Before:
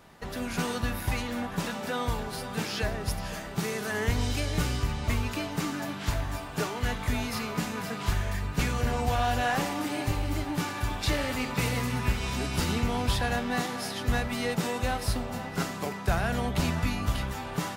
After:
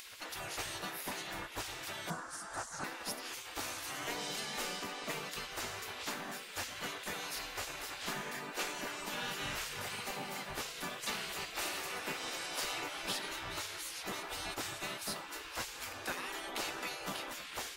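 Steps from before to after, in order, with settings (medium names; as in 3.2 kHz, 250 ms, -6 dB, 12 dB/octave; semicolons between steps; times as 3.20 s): spectral gate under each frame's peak -15 dB weak; 2.10–2.84 s: FFT filter 110 Hz 0 dB, 160 Hz +13 dB, 330 Hz -1 dB, 1.5 kHz +6 dB, 2.3 kHz -12 dB, 3.6 kHz -13 dB, 5.7 kHz -1 dB, 8.9 kHz +2 dB, 14 kHz -21 dB; upward compressor, threshold -34 dBFS; trim -3.5 dB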